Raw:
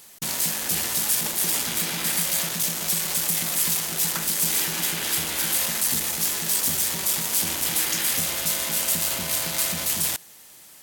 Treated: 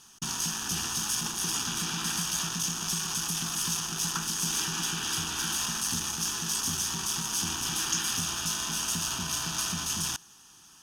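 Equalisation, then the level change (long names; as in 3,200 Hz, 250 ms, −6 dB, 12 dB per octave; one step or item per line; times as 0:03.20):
low-pass with resonance 6,800 Hz, resonance Q 11
parametric band 4,100 Hz −12.5 dB 0.4 octaves
phaser with its sweep stopped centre 2,100 Hz, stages 6
0.0 dB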